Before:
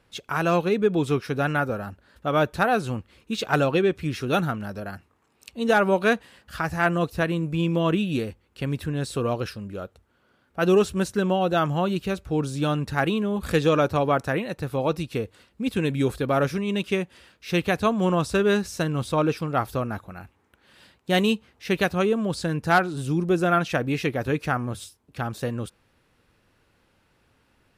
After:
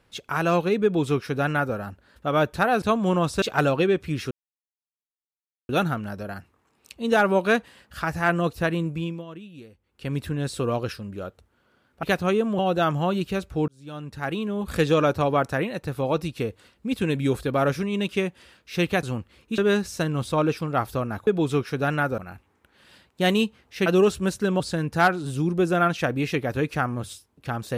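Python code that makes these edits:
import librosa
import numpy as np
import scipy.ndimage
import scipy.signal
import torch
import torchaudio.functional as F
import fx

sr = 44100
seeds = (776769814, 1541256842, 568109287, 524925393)

y = fx.edit(x, sr, fx.duplicate(start_s=0.84, length_s=0.91, to_s=20.07),
    fx.swap(start_s=2.82, length_s=0.55, other_s=17.78, other_length_s=0.6),
    fx.insert_silence(at_s=4.26, length_s=1.38),
    fx.fade_down_up(start_s=7.4, length_s=1.34, db=-18.0, fade_s=0.42),
    fx.swap(start_s=10.6, length_s=0.74, other_s=21.75, other_length_s=0.56),
    fx.fade_in_span(start_s=12.43, length_s=1.13), tone=tone)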